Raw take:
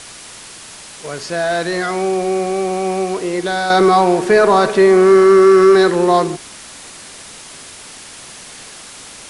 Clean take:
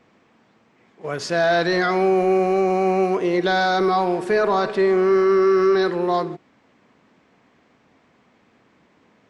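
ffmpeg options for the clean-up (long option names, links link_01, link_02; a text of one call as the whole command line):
ffmpeg -i in.wav -af "afwtdn=0.022,asetnsamples=nb_out_samples=441:pad=0,asendcmd='3.7 volume volume -8dB',volume=0dB" out.wav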